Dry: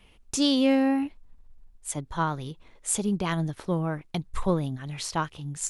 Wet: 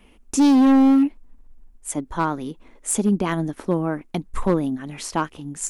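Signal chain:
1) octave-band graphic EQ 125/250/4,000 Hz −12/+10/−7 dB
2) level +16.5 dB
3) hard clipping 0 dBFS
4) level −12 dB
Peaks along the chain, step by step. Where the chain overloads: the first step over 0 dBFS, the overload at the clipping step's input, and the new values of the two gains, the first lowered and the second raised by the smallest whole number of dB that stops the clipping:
−7.5, +9.0, 0.0, −12.0 dBFS
step 2, 9.0 dB
step 2 +7.5 dB, step 4 −3 dB

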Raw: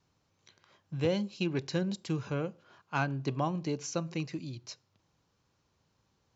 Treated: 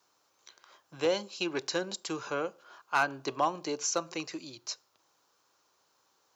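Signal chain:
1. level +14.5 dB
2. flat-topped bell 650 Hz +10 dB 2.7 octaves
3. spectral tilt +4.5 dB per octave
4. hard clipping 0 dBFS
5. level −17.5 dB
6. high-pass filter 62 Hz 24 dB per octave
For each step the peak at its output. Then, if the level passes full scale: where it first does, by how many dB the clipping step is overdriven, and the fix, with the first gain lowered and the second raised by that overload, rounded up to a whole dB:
−1.0, +5.0, +5.0, 0.0, −17.5, −16.0 dBFS
step 2, 5.0 dB
step 1 +9.5 dB, step 5 −12.5 dB

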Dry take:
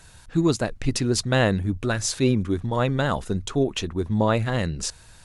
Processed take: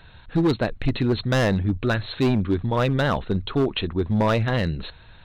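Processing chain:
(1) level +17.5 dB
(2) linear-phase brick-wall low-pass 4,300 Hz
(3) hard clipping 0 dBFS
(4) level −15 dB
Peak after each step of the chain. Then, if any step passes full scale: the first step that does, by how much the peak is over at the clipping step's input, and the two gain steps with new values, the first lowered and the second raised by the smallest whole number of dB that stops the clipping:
+9.0, +9.0, 0.0, −15.0 dBFS
step 1, 9.0 dB
step 1 +8.5 dB, step 4 −6 dB

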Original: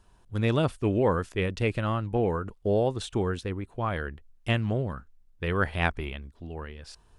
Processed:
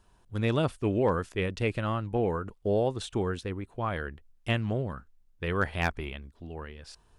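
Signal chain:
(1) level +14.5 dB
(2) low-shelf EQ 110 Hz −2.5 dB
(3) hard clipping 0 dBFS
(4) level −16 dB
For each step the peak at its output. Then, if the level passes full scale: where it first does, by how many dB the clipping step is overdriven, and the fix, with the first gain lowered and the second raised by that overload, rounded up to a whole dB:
+5.5, +6.0, 0.0, −16.0 dBFS
step 1, 6.0 dB
step 1 +8.5 dB, step 4 −10 dB

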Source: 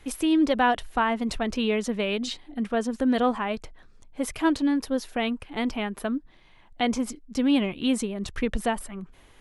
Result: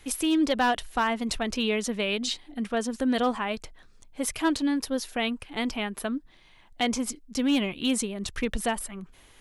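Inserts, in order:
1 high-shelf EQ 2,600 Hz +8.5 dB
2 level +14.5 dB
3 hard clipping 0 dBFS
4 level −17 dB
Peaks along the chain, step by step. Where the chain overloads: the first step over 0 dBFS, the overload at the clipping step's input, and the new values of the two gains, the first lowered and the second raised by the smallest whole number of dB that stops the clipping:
−7.5, +7.0, 0.0, −17.0 dBFS
step 2, 7.0 dB
step 2 +7.5 dB, step 4 −10 dB

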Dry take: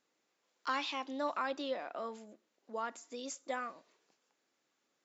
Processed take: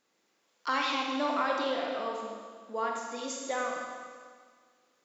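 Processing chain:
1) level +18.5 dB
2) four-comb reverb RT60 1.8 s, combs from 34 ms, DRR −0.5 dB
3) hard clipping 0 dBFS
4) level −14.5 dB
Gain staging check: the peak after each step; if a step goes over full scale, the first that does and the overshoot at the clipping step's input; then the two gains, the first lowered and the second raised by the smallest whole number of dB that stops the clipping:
−3.0, −2.0, −2.0, −16.5 dBFS
no step passes full scale

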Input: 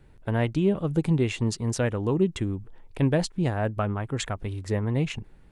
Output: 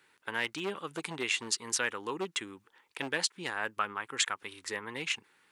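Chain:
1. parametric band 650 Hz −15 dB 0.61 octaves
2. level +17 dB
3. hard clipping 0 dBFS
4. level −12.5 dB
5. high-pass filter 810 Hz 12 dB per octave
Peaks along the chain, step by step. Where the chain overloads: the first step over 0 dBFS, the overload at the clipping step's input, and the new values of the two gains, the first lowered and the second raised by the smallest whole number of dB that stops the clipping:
−12.5, +4.5, 0.0, −12.5, −13.0 dBFS
step 2, 4.5 dB
step 2 +12 dB, step 4 −7.5 dB

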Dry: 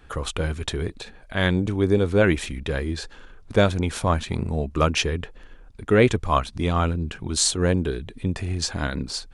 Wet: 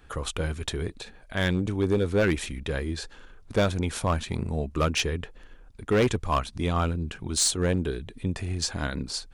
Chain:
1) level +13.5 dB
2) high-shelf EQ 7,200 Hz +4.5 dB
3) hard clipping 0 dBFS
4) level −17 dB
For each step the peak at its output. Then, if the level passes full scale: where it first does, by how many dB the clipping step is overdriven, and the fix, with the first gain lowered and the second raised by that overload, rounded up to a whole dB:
+8.0, +9.5, 0.0, −17.0 dBFS
step 1, 9.5 dB
step 1 +3.5 dB, step 4 −7 dB

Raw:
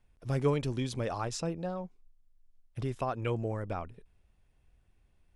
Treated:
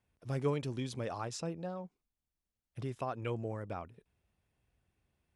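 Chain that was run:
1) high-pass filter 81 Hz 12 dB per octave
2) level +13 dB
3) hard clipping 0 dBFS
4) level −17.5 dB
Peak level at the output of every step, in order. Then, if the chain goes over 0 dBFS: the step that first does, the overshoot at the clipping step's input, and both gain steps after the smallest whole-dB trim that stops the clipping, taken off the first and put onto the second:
−17.0, −4.0, −4.0, −21.5 dBFS
no step passes full scale

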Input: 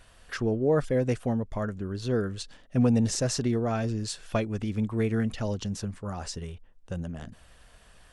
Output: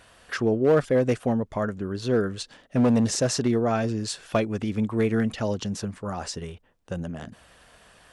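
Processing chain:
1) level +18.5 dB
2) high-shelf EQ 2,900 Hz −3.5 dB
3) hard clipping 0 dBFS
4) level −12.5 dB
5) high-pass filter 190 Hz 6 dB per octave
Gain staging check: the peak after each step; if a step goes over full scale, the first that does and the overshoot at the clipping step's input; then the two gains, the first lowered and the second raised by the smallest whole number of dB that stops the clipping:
+6.0, +6.0, 0.0, −12.5, −9.5 dBFS
step 1, 6.0 dB
step 1 +12.5 dB, step 4 −6.5 dB

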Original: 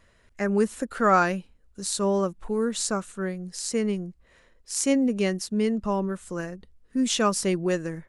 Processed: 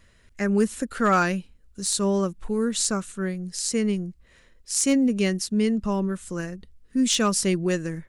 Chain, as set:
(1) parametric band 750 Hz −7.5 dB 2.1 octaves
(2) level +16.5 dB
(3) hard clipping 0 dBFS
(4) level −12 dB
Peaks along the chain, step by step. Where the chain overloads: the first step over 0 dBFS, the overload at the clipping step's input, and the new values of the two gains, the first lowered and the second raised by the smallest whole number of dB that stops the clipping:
−8.0, +8.5, 0.0, −12.0 dBFS
step 2, 8.5 dB
step 2 +7.5 dB, step 4 −3 dB

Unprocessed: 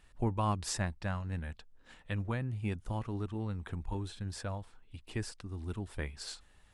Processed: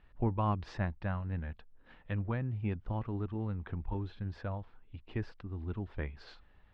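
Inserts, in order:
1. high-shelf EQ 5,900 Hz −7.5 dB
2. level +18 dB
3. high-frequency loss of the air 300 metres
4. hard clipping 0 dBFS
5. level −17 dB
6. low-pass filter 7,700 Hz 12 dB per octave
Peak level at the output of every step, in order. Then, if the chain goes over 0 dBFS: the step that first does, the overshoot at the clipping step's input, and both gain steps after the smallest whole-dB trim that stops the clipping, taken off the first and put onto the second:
−19.5, −1.5, −2.5, −2.5, −19.5, −19.5 dBFS
no step passes full scale

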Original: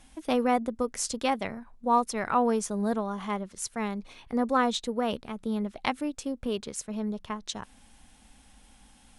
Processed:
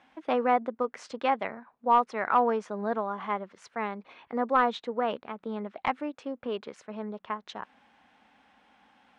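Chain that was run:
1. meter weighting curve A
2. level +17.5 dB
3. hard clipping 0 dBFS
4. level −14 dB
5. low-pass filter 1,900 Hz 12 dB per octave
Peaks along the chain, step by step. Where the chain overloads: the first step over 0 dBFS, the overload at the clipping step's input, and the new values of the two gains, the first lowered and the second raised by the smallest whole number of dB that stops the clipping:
−7.5, +10.0, 0.0, −14.0, −13.5 dBFS
step 2, 10.0 dB
step 2 +7.5 dB, step 4 −4 dB

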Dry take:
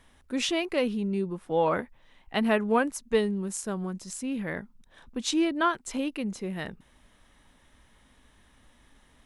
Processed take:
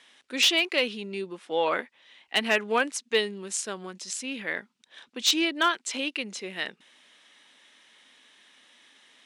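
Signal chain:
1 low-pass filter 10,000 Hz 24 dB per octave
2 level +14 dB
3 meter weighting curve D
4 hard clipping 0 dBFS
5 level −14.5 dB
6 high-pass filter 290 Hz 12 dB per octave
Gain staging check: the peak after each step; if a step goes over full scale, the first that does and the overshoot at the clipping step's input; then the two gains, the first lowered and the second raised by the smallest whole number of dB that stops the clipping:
−11.5, +2.5, +8.0, 0.0, −14.5, −9.5 dBFS
step 2, 8.0 dB
step 2 +6 dB, step 5 −6.5 dB

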